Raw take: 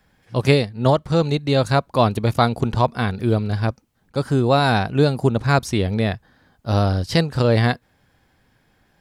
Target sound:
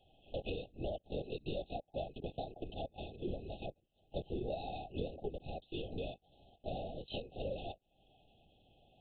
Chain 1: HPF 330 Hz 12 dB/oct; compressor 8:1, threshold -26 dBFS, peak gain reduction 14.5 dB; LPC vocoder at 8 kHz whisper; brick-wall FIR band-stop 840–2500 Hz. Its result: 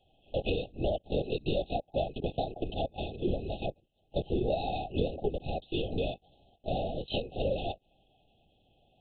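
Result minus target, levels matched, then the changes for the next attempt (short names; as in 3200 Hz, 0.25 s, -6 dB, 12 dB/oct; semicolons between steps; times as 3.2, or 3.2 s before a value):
compressor: peak gain reduction -9.5 dB
change: compressor 8:1, threshold -37 dBFS, peak gain reduction 24 dB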